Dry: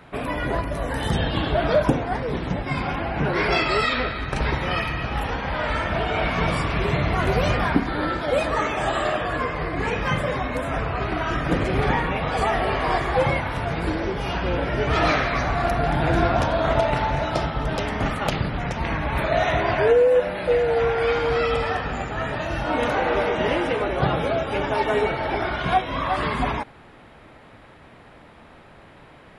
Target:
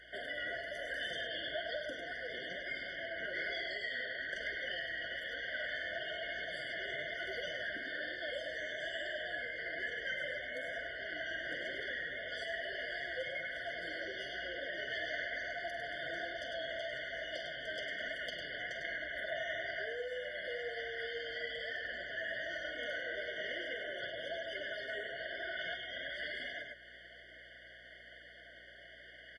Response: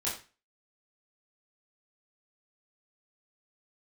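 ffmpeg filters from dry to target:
-filter_complex "[0:a]acrossover=split=430 4200:gain=0.0794 1 0.112[link_01][link_02][link_03];[link_01][link_02][link_03]amix=inputs=3:normalize=0,aecho=1:1:46.65|102:0.251|0.447,acrossover=split=210|1700[link_04][link_05][link_06];[link_04]acompressor=threshold=-52dB:ratio=4[link_07];[link_05]acompressor=threshold=-34dB:ratio=4[link_08];[link_06]acompressor=threshold=-45dB:ratio=4[link_09];[link_07][link_08][link_09]amix=inputs=3:normalize=0,flanger=delay=2.1:depth=7.9:regen=55:speed=1.1:shape=triangular,aeval=exprs='val(0)+0.000708*(sin(2*PI*60*n/s)+sin(2*PI*2*60*n/s)/2+sin(2*PI*3*60*n/s)/3+sin(2*PI*4*60*n/s)/4+sin(2*PI*5*60*n/s)/5)':channel_layout=same,tiltshelf=frequency=1400:gain=-8.5,bandreject=frequency=430:width=12,afftfilt=real='re*eq(mod(floor(b*sr/1024/720),2),0)':imag='im*eq(mod(floor(b*sr/1024/720),2),0)':win_size=1024:overlap=0.75,volume=2.5dB"

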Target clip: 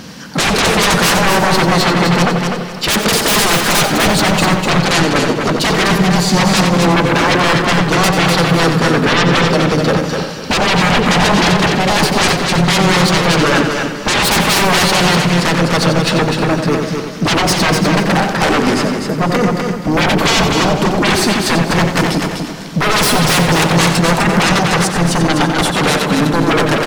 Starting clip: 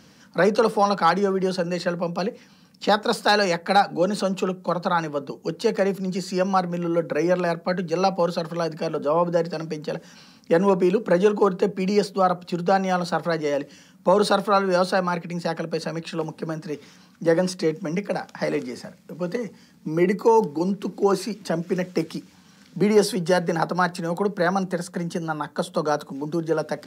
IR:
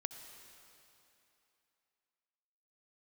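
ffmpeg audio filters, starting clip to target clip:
-filter_complex "[0:a]aeval=exprs='0.422*sin(PI/2*7.94*val(0)/0.422)':channel_layout=same,aecho=1:1:250|500|750:0.562|0.141|0.0351,asplit=2[link_01][link_02];[1:a]atrim=start_sample=2205,highshelf=frequency=4700:gain=-4.5,adelay=90[link_03];[link_02][link_03]afir=irnorm=-1:irlink=0,volume=-4dB[link_04];[link_01][link_04]amix=inputs=2:normalize=0,asplit=2[link_05][link_06];[link_06]asetrate=35002,aresample=44100,atempo=1.25992,volume=-10dB[link_07];[link_05][link_07]amix=inputs=2:normalize=0,volume=-3.5dB"

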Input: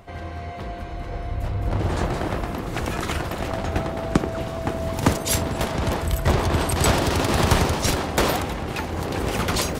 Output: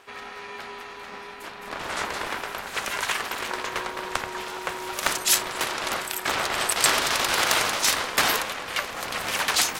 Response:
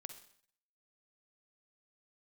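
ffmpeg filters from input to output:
-af "volume=12.5dB,asoftclip=hard,volume=-12.5dB,highpass=1100,aeval=exprs='val(0)*sin(2*PI*290*n/s)':channel_layout=same,volume=7.5dB"

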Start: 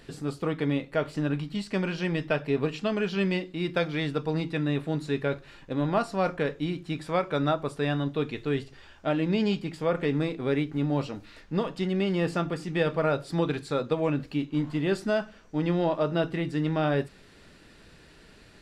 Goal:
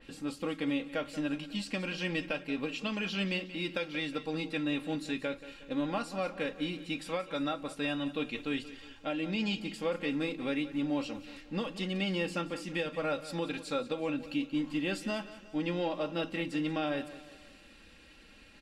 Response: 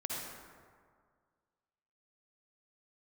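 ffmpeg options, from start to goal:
-filter_complex "[0:a]equalizer=frequency=2700:width_type=o:width=0.56:gain=8,aecho=1:1:3.7:0.66,alimiter=limit=-17dB:level=0:latency=1:release=402,asplit=2[link_01][link_02];[link_02]aecho=0:1:181|362|543|724:0.178|0.0854|0.041|0.0197[link_03];[link_01][link_03]amix=inputs=2:normalize=0,adynamicequalizer=threshold=0.00447:dfrequency=3800:dqfactor=0.7:tfrequency=3800:tqfactor=0.7:attack=5:release=100:ratio=0.375:range=3.5:mode=boostabove:tftype=highshelf,volume=-6.5dB"

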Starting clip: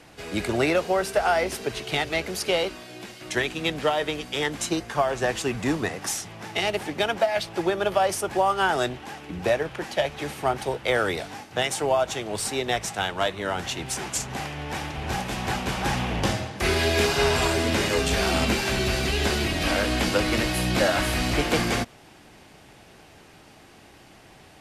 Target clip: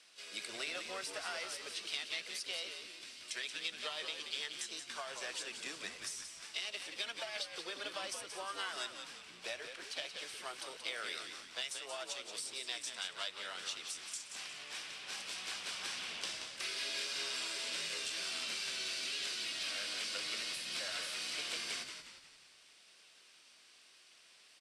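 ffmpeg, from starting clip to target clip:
ffmpeg -i in.wav -filter_complex "[0:a]aderivative,acompressor=threshold=-35dB:ratio=6,asplit=2[link_01][link_02];[link_02]asetrate=58866,aresample=44100,atempo=0.749154,volume=-8dB[link_03];[link_01][link_03]amix=inputs=2:normalize=0,highpass=frequency=120:width=0.5412,highpass=frequency=120:width=1.3066,equalizer=frequency=130:width_type=q:width=4:gain=-8,equalizer=frequency=290:width_type=q:width=4:gain=-3,equalizer=frequency=830:width_type=q:width=4:gain=-10,equalizer=frequency=1900:width_type=q:width=4:gain=-3,equalizer=frequency=6800:width_type=q:width=4:gain=-9,lowpass=frequency=7900:width=0.5412,lowpass=frequency=7900:width=1.3066,asplit=6[link_04][link_05][link_06][link_07][link_08][link_09];[link_05]adelay=179,afreqshift=-84,volume=-7.5dB[link_10];[link_06]adelay=358,afreqshift=-168,volume=-14.8dB[link_11];[link_07]adelay=537,afreqshift=-252,volume=-22.2dB[link_12];[link_08]adelay=716,afreqshift=-336,volume=-29.5dB[link_13];[link_09]adelay=895,afreqshift=-420,volume=-36.8dB[link_14];[link_04][link_10][link_11][link_12][link_13][link_14]amix=inputs=6:normalize=0" out.wav

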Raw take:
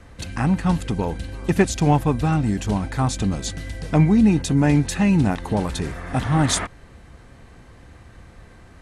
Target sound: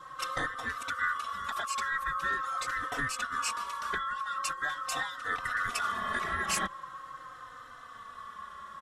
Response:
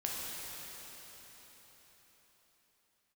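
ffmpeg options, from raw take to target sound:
-filter_complex "[0:a]afftfilt=real='real(if(lt(b,960),b+48*(1-2*mod(floor(b/48),2)),b),0)':imag='imag(if(lt(b,960),b+48*(1-2*mod(floor(b/48),2)),b),0)':win_size=2048:overlap=0.75,acompressor=threshold=-23dB:ratio=6,afftfilt=real='re*lt(hypot(re,im),0.251)':imag='im*lt(hypot(re,im),0.251)':win_size=1024:overlap=0.75,adynamicequalizer=threshold=0.00501:dfrequency=1600:dqfactor=1:tfrequency=1600:tqfactor=1:attack=5:release=100:ratio=0.375:range=2:mode=boostabove:tftype=bell,asplit=2[link_01][link_02];[link_02]adelay=3.3,afreqshift=-0.43[link_03];[link_01][link_03]amix=inputs=2:normalize=1"

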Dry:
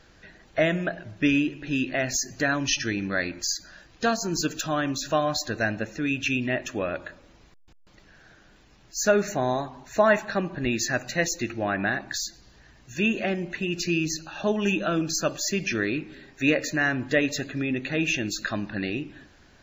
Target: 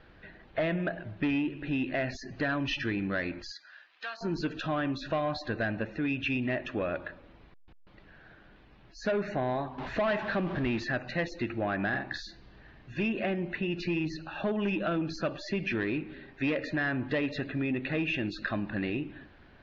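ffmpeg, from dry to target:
ffmpeg -i in.wav -filter_complex "[0:a]asettb=1/sr,asplit=3[link_01][link_02][link_03];[link_01]atrim=end=9.784[link_04];[link_02]atrim=start=9.78:end=10.84,asetpts=PTS-STARTPTS,afade=type=in:duration=0.004:curve=qsin,afade=type=out:start_time=1.056:duration=0.004:curve=qsin,aeval=exprs='val(0)+0.5*0.0237*sgn(val(0))':channel_layout=same[link_05];[link_03]atrim=start=10.836[link_06];[link_04][link_05]acrossfade=duration=0.004:curve1=hsin:curve2=qsin[link_07];[link_07][link_06]acrossfade=duration=0.004:curve1=qsin:curve2=hsin,aemphasis=mode=reproduction:type=50kf,asoftclip=type=tanh:threshold=-19dB,lowpass=frequency=3900:width=0.5412,lowpass=frequency=3900:width=1.3066,acompressor=threshold=-28dB:ratio=2.5,asettb=1/sr,asplit=3[link_08][link_09][link_10];[link_08]atrim=end=3.514[link_11];[link_09]atrim=start=3.51:end=4.21,asetpts=PTS-STARTPTS,afade=type=in:duration=0.004:curve=qsin,afade=type=out:start_time=0.696:duration=0.004:curve=qsin,highpass=1400[link_12];[link_10]atrim=start=4.206[link_13];[link_11][link_12]acrossfade=duration=0.004:curve1=hsin:curve2=qsin[link_14];[link_14][link_13]acrossfade=duration=0.004:curve1=qsin:curve2=hsin,asettb=1/sr,asplit=3[link_15][link_16][link_17];[link_15]atrim=end=11.884[link_18];[link_16]atrim=start=11.88:end=13.03,asetpts=PTS-STARTPTS,afade=type=in:duration=0.004:curve=qsin,afade=type=out:start_time=1.146:duration=0.004:curve=qsin,asplit=2[link_19][link_20];[link_20]adelay=46,volume=-6dB[link_21];[link_19][link_21]amix=inputs=2:normalize=0,atrim=end_sample=50715[link_22];[link_17]atrim=start=13.026[link_23];[link_18][link_22]acrossfade=duration=0.004:curve1=hsin:curve2=qsin[link_24];[link_24][link_23]acrossfade=duration=0.004:curve1=qsin:curve2=hsin" out.wav

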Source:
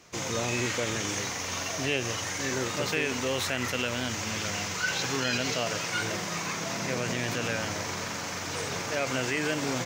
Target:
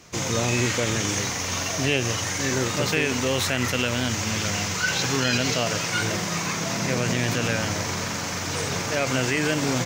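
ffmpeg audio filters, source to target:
ffmpeg -i in.wav -af "acontrast=30,bass=frequency=250:gain=5,treble=frequency=4000:gain=2,aeval=exprs='0.376*(cos(1*acos(clip(val(0)/0.376,-1,1)))-cos(1*PI/2))+0.0119*(cos(2*acos(clip(val(0)/0.376,-1,1)))-cos(2*PI/2))+0.0119*(cos(3*acos(clip(val(0)/0.376,-1,1)))-cos(3*PI/2))':channel_layout=same" out.wav

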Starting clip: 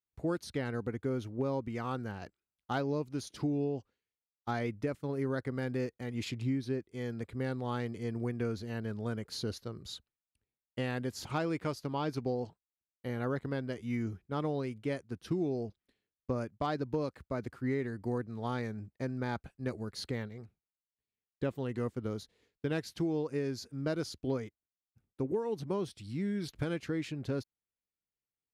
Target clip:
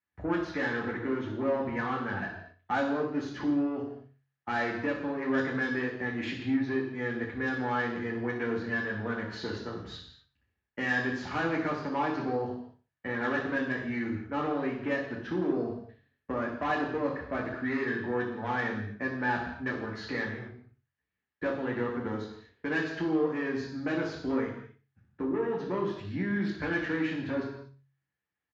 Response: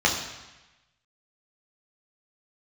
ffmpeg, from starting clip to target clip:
-filter_complex "[0:a]lowpass=2800,equalizer=frequency=1700:width=4.8:gain=12.5,bandreject=frequency=510:width=12,bandreject=frequency=45.52:width_type=h:width=4,bandreject=frequency=91.04:width_type=h:width=4,bandreject=frequency=136.56:width_type=h:width=4,acrossover=split=250[link_01][link_02];[link_01]alimiter=level_in=17dB:limit=-24dB:level=0:latency=1:release=379,volume=-17dB[link_03];[link_03][link_02]amix=inputs=2:normalize=0,asoftclip=type=tanh:threshold=-31dB,aecho=1:1:60|120|180:0.224|0.0761|0.0259[link_04];[1:a]atrim=start_sample=2205,afade=type=out:start_time=0.32:duration=0.01,atrim=end_sample=14553[link_05];[link_04][link_05]afir=irnorm=-1:irlink=0,volume=-8dB"

